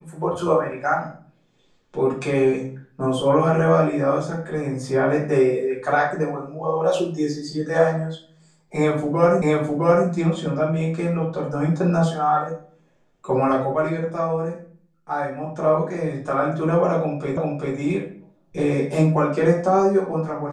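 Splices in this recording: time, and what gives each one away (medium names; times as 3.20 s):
9.42 s: repeat of the last 0.66 s
17.37 s: repeat of the last 0.39 s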